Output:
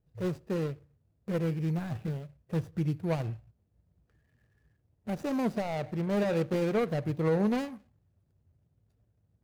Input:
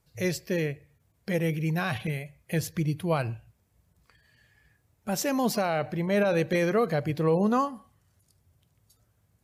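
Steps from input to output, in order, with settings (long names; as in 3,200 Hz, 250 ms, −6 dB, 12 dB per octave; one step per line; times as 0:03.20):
running median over 41 samples
level −2 dB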